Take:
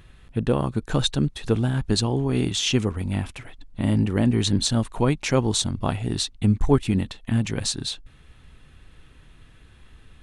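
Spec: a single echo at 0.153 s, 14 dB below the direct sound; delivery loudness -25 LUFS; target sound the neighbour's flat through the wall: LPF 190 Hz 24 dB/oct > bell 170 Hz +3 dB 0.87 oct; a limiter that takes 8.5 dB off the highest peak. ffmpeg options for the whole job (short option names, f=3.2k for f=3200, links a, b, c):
-af "alimiter=limit=-13dB:level=0:latency=1,lowpass=f=190:w=0.5412,lowpass=f=190:w=1.3066,equalizer=f=170:t=o:w=0.87:g=3,aecho=1:1:153:0.2,volume=3dB"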